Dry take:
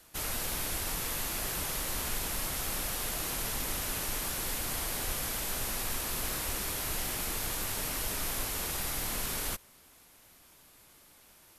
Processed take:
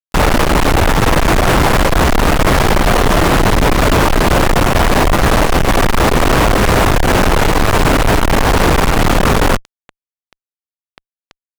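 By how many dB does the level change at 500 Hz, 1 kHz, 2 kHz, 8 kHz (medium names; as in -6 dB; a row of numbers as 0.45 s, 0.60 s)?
+29.0 dB, +28.0 dB, +23.5 dB, +9.5 dB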